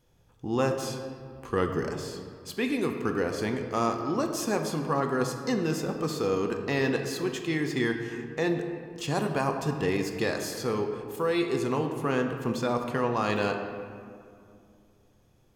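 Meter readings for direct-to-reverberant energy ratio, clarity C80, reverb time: 4.0 dB, 7.0 dB, 2.4 s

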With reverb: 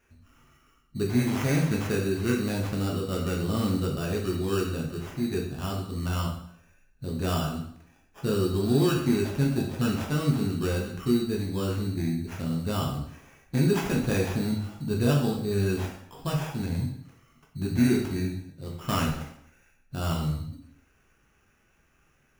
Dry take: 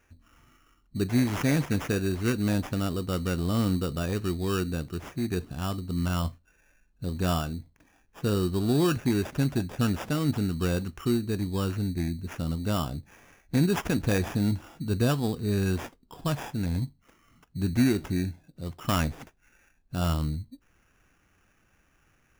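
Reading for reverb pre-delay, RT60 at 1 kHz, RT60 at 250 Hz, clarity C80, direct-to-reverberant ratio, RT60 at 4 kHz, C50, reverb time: 5 ms, 0.70 s, 0.65 s, 8.0 dB, -2.0 dB, 0.65 s, 5.0 dB, 0.65 s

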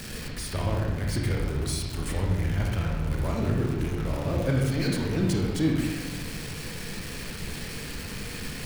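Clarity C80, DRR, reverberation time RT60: 3.5 dB, -1.5 dB, 1.2 s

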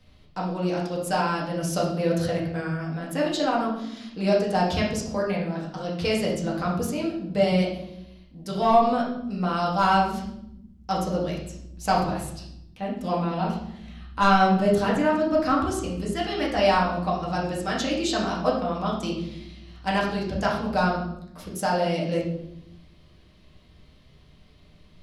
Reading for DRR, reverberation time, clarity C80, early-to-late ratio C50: -4.5 dB, 0.80 s, 7.0 dB, 4.0 dB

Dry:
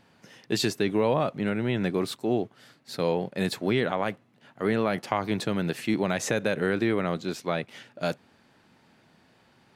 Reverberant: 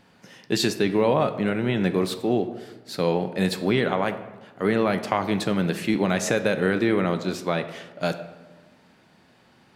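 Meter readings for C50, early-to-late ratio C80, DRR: 11.5 dB, 13.5 dB, 9.0 dB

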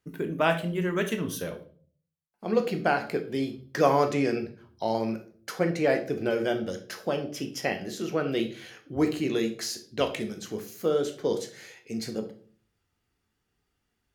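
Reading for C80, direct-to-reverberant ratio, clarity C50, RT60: 16.5 dB, 6.0 dB, 11.5 dB, 0.45 s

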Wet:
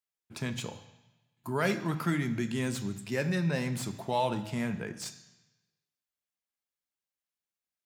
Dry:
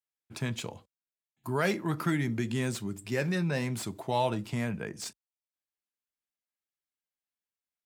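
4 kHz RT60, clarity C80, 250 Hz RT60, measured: 1.1 s, 14.5 dB, 1.0 s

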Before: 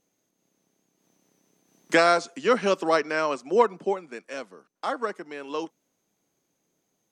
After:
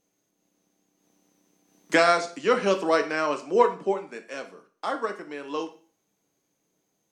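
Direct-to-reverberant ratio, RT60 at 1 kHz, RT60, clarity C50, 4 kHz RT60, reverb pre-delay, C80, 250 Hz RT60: 6.0 dB, 0.40 s, 0.40 s, 13.0 dB, 0.40 s, 5 ms, 18.0 dB, 0.40 s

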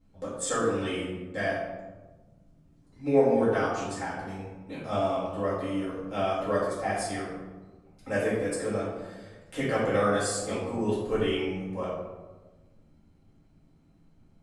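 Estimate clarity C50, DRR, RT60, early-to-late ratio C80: 0.5 dB, -9.5 dB, 1.2 s, 3.0 dB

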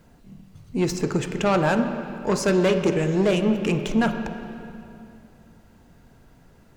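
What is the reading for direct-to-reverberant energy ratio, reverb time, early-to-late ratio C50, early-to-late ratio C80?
7.0 dB, 2.6 s, 8.0 dB, 8.5 dB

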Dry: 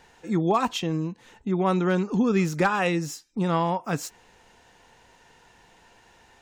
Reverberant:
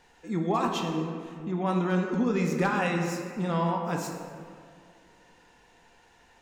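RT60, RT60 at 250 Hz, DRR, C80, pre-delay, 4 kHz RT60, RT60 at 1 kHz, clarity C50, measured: 2.2 s, 2.5 s, 1.5 dB, 5.0 dB, 3 ms, 1.3 s, 2.0 s, 3.5 dB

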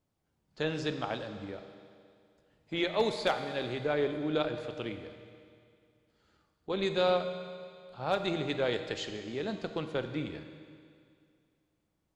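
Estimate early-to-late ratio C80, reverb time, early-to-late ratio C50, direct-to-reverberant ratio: 9.0 dB, 2.3 s, 8.5 dB, 7.0 dB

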